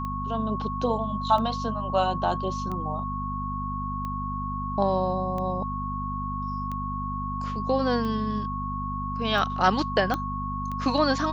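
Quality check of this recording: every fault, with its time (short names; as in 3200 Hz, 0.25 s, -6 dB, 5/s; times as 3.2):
hum 50 Hz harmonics 5 -33 dBFS
tick 45 rpm -22 dBFS
tone 1100 Hz -31 dBFS
10.14 pop -15 dBFS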